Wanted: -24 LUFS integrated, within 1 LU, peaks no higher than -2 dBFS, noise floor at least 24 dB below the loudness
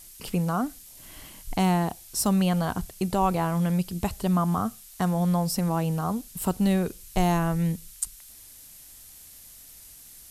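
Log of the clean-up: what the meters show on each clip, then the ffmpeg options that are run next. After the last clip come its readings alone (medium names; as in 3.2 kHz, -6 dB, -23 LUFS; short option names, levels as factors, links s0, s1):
noise floor -48 dBFS; noise floor target -51 dBFS; loudness -26.5 LUFS; peak level -10.5 dBFS; loudness target -24.0 LUFS
-> -af "afftdn=nr=6:nf=-48"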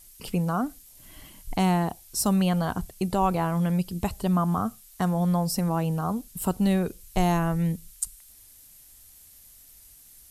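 noise floor -52 dBFS; loudness -26.5 LUFS; peak level -10.5 dBFS; loudness target -24.0 LUFS
-> -af "volume=1.33"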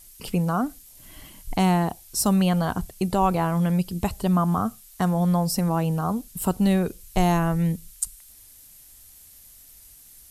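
loudness -24.0 LUFS; peak level -8.0 dBFS; noise floor -50 dBFS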